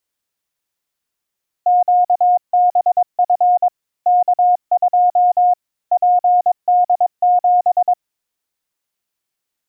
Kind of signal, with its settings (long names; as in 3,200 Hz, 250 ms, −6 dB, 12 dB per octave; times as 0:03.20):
Morse code "QBF K2 PD7" 22 words per minute 718 Hz −9 dBFS